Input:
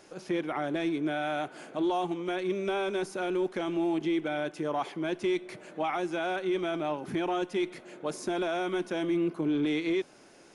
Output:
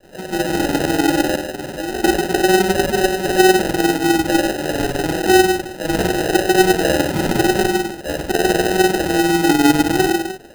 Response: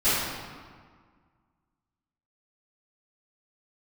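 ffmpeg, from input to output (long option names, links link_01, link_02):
-filter_complex "[1:a]atrim=start_sample=2205,afade=type=out:start_time=0.42:duration=0.01,atrim=end_sample=18963[link_01];[0:a][link_01]afir=irnorm=-1:irlink=0,tremolo=f=20:d=0.51,asettb=1/sr,asplit=3[link_02][link_03][link_04];[link_02]atrim=end=1.354[link_05];[link_03]atrim=start=1.35:end=2.04,asetpts=PTS-STARTPTS,afade=type=in:duration=0.004:curve=qsin,afade=type=out:start_time=0.686:duration=0.004:curve=qsin,acompressor=threshold=-20dB:ratio=10[link_06];[link_04]atrim=start=2.036[link_07];[link_05][link_06]acrossfade=duration=0.004:curve1=hsin:curve2=qsin[link_08];[link_08][link_07]acrossfade=duration=0.004:curve1=qsin:curve2=hsin,asettb=1/sr,asplit=3[link_09][link_10][link_11];[link_09]atrim=end=6.544[link_12];[link_10]atrim=start=6.54:end=7.9,asetpts=PTS-STARTPTS,afade=type=in:duration=0.004:curve=qsin,afade=type=out:start_time=1.356:duration=0.004:curve=qsin,lowshelf=frequency=130:gain=9[link_13];[link_11]atrim=start=7.896[link_14];[link_12][link_13]acrossfade=duration=0.004:curve1=hsin:curve2=qsin[link_15];[link_15][link_14]acrossfade=duration=0.004:curve1=qsin:curve2=hsin,acrusher=samples=39:mix=1:aa=0.000001,volume=-1dB"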